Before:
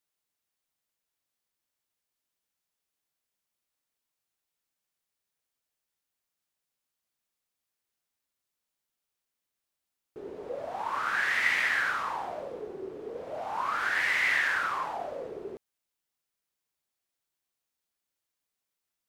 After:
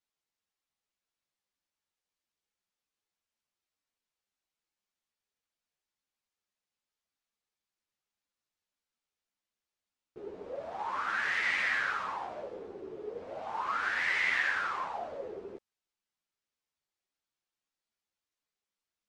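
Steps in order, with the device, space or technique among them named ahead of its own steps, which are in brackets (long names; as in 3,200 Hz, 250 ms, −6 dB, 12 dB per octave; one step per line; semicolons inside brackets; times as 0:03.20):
string-machine ensemble chorus (string-ensemble chorus; low-pass filter 6,800 Hz 12 dB per octave)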